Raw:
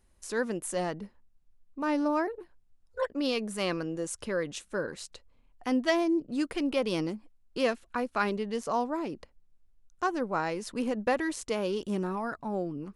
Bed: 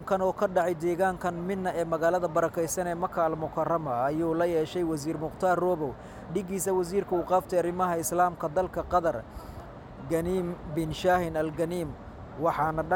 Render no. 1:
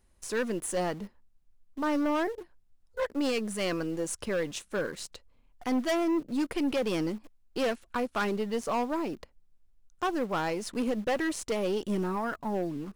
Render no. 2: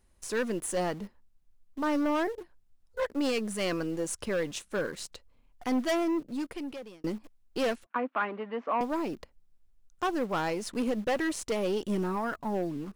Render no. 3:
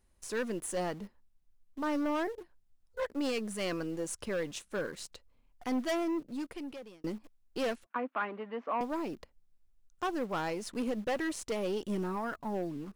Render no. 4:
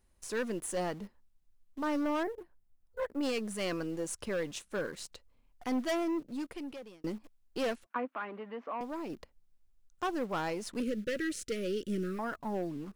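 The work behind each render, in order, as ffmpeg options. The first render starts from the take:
ffmpeg -i in.wav -filter_complex "[0:a]asplit=2[link_01][link_02];[link_02]acrusher=bits=5:dc=4:mix=0:aa=0.000001,volume=-6dB[link_03];[link_01][link_03]amix=inputs=2:normalize=0,volume=24dB,asoftclip=hard,volume=-24dB" out.wav
ffmpeg -i in.wav -filter_complex "[0:a]asettb=1/sr,asplit=3[link_01][link_02][link_03];[link_01]atrim=end=7.864[link_04];[link_02]atrim=start=7.86:end=8.81,asetpts=PTS-STARTPTS,afade=type=in:duration=0.004:curve=qsin,afade=type=out:start_time=0.946:duration=0.004:curve=qsin,highpass=frequency=270:width=0.5412,highpass=frequency=270:width=1.3066,equalizer=frequency=270:width_type=q:width=4:gain=5,equalizer=frequency=390:width_type=q:width=4:gain=-9,equalizer=frequency=1100:width_type=q:width=4:gain=4,lowpass=frequency=2500:width=0.5412,lowpass=frequency=2500:width=1.3066[link_05];[link_03]atrim=start=8.806[link_06];[link_04][link_05]acrossfade=duration=0.004:curve1=hsin:curve2=qsin[link_07];[link_07][link_06]acrossfade=duration=0.004:curve1=qsin:curve2=hsin,asplit=2[link_08][link_09];[link_08]atrim=end=7.04,asetpts=PTS-STARTPTS,afade=type=out:start_time=5.95:duration=1.09[link_10];[link_09]atrim=start=7.04,asetpts=PTS-STARTPTS,afade=type=in:duration=0.004:curve=hsin[link_11];[link_10][link_11]concat=n=2:v=0:a=1" out.wav
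ffmpeg -i in.wav -af "volume=-4dB" out.wav
ffmpeg -i in.wav -filter_complex "[0:a]asettb=1/sr,asplit=3[link_01][link_02][link_03];[link_01]atrim=end=2.234[link_04];[link_02]atrim=start=2.23:end=3.23,asetpts=PTS-STARTPTS,afade=type=in:duration=0.004:curve=qsin,afade=type=out:start_time=0.996:duration=0.004:curve=qsin,equalizer=frequency=4800:width_type=o:width=2.1:gain=-8.5[link_05];[link_03]atrim=start=3.226[link_06];[link_04][link_05]acrossfade=duration=0.004:curve1=hsin:curve2=qsin[link_07];[link_07][link_06]acrossfade=duration=0.004:curve1=qsin:curve2=hsin,asettb=1/sr,asplit=3[link_08][link_09][link_10];[link_08]atrim=end=8.054[link_11];[link_09]atrim=start=8.05:end=9.1,asetpts=PTS-STARTPTS,afade=type=in:duration=0.004:curve=qsin,afade=type=out:start_time=1.046:duration=0.004:curve=qsin,acompressor=threshold=-42dB:ratio=1.5:attack=3.2:release=140:knee=1:detection=peak[link_12];[link_10]atrim=start=9.096[link_13];[link_11][link_12]acrossfade=duration=0.004:curve1=hsin:curve2=qsin[link_14];[link_14][link_13]acrossfade=duration=0.004:curve1=qsin:curve2=hsin,asettb=1/sr,asplit=3[link_15][link_16][link_17];[link_15]atrim=end=10.804[link_18];[link_16]atrim=start=10.8:end=12.19,asetpts=PTS-STARTPTS,afade=type=in:duration=0.004:curve=qsin,afade=type=out:start_time=1.386:duration=0.004:curve=qsin,asuperstop=centerf=860:order=8:qfactor=1.1[link_19];[link_17]atrim=start=12.186[link_20];[link_18][link_19]acrossfade=duration=0.004:curve1=hsin:curve2=qsin[link_21];[link_21][link_20]acrossfade=duration=0.004:curve1=qsin:curve2=hsin" out.wav

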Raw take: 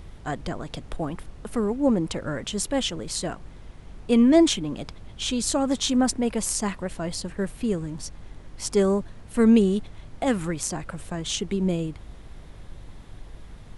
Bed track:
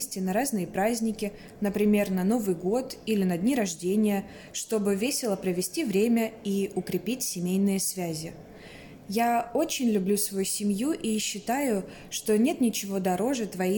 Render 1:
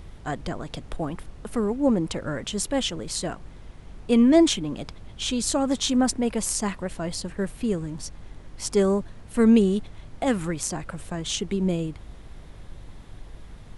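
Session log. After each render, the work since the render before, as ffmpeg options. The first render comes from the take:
ffmpeg -i in.wav -af anull out.wav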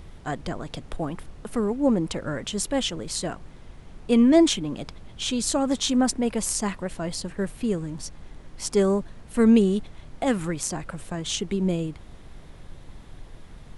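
ffmpeg -i in.wav -af "bandreject=frequency=50:width_type=h:width=4,bandreject=frequency=100:width_type=h:width=4" out.wav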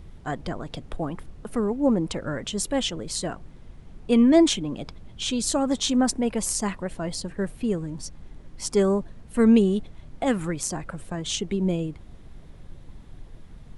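ffmpeg -i in.wav -af "afftdn=noise_reduction=6:noise_floor=-46" out.wav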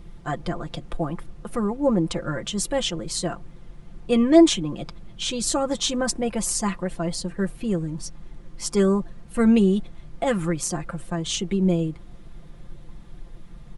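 ffmpeg -i in.wav -af "equalizer=frequency=1200:width_type=o:width=0.2:gain=3,aecho=1:1:5.8:0.65" out.wav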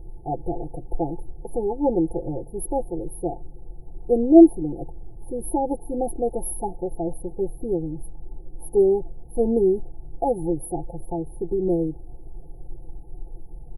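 ffmpeg -i in.wav -af "afftfilt=real='re*(1-between(b*sr/4096,890,9800))':imag='im*(1-between(b*sr/4096,890,9800))':win_size=4096:overlap=0.75,aecho=1:1:2.5:0.79" out.wav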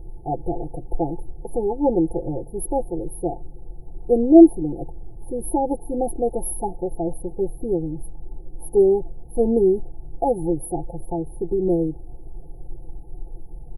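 ffmpeg -i in.wav -af "volume=2dB,alimiter=limit=-1dB:level=0:latency=1" out.wav

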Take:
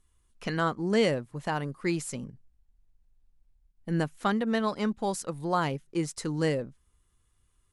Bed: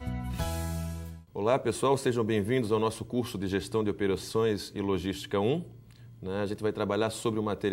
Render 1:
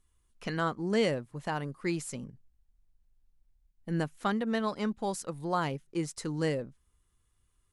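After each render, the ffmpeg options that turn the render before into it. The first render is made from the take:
ffmpeg -i in.wav -af "volume=-3dB" out.wav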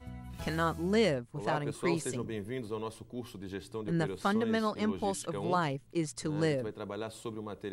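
ffmpeg -i in.wav -i bed.wav -filter_complex "[1:a]volume=-10.5dB[link_01];[0:a][link_01]amix=inputs=2:normalize=0" out.wav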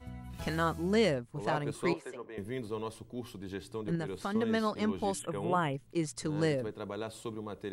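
ffmpeg -i in.wav -filter_complex "[0:a]asettb=1/sr,asplit=3[link_01][link_02][link_03];[link_01]atrim=end=1.934[link_04];[link_02]atrim=start=1.93:end=2.38,asetpts=PTS-STARTPTS,afade=type=in:duration=0.004:curve=qsin,afade=type=out:start_time=0.446:duration=0.004:curve=qsin,acrossover=split=400 2400:gain=0.0708 1 0.141[link_05][link_06][link_07];[link_05][link_06][link_07]amix=inputs=3:normalize=0[link_08];[link_03]atrim=start=2.376[link_09];[link_04][link_08]acrossfade=duration=0.004:curve1=hsin:curve2=qsin[link_10];[link_10][link_09]acrossfade=duration=0.004:curve1=qsin:curve2=hsin,asettb=1/sr,asplit=3[link_11][link_12][link_13];[link_11]atrim=end=3.954[link_14];[link_12]atrim=start=3.95:end=4.35,asetpts=PTS-STARTPTS,afade=type=in:duration=0.004:curve=qsin,afade=type=out:start_time=0.396:duration=0.004:curve=qsin,acompressor=threshold=-33dB:ratio=2.5:attack=3.2:release=140:knee=1:detection=peak[link_15];[link_13]atrim=start=4.346[link_16];[link_14][link_15]acrossfade=duration=0.004:curve1=hsin:curve2=qsin[link_17];[link_17][link_16]acrossfade=duration=0.004:curve1=qsin:curve2=hsin,asettb=1/sr,asplit=3[link_18][link_19][link_20];[link_18]atrim=end=5.194[link_21];[link_19]atrim=start=5.19:end=5.74,asetpts=PTS-STARTPTS,afade=type=in:duration=0.004:curve=qsin,afade=type=out:start_time=0.546:duration=0.004:curve=qsin,asuperstop=centerf=5000:order=8:qfactor=1.3[link_22];[link_20]atrim=start=5.736[link_23];[link_21][link_22]acrossfade=duration=0.004:curve1=hsin:curve2=qsin[link_24];[link_24][link_23]acrossfade=duration=0.004:curve1=qsin:curve2=hsin" out.wav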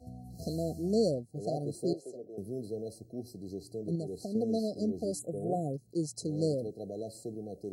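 ffmpeg -i in.wav -af "afftfilt=real='re*(1-between(b*sr/4096,760,4000))':imag='im*(1-between(b*sr/4096,760,4000))':win_size=4096:overlap=0.75,highpass=85" out.wav

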